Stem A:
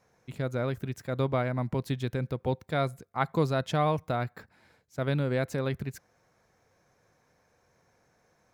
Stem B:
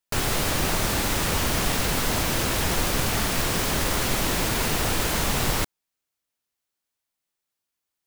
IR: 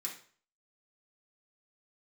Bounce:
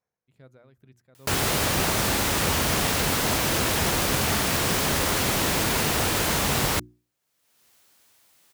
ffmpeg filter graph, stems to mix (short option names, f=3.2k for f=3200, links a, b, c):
-filter_complex "[0:a]tremolo=f=2.2:d=0.56,volume=-19dB[a];[1:a]highpass=60,acompressor=mode=upward:threshold=-43dB:ratio=2.5,adelay=1150,volume=1.5dB[b];[a][b]amix=inputs=2:normalize=0,bandreject=f=60:t=h:w=6,bandreject=f=120:t=h:w=6,bandreject=f=180:t=h:w=6,bandreject=f=240:t=h:w=6,bandreject=f=300:t=h:w=6,bandreject=f=360:t=h:w=6"